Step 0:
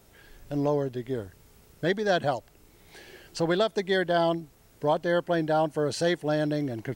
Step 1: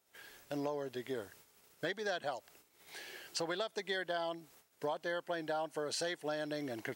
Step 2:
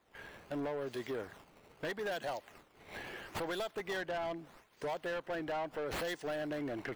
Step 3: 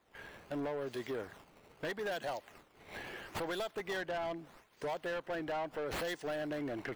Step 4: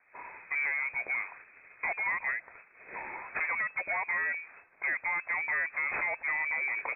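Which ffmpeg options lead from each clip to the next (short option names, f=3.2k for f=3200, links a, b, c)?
-af "highpass=f=870:p=1,agate=range=-16dB:threshold=-60dB:ratio=16:detection=peak,acompressor=threshold=-36dB:ratio=6,volume=1.5dB"
-filter_complex "[0:a]acrossover=split=3300[a][b];[b]acrusher=samples=15:mix=1:aa=0.000001:lfo=1:lforange=24:lforate=0.77[c];[a][c]amix=inputs=2:normalize=0,asoftclip=type=tanh:threshold=-38dB,volume=5dB"
-af anull
-af "lowpass=f=2.2k:t=q:w=0.5098,lowpass=f=2.2k:t=q:w=0.6013,lowpass=f=2.2k:t=q:w=0.9,lowpass=f=2.2k:t=q:w=2.563,afreqshift=-2600,volume=6dB"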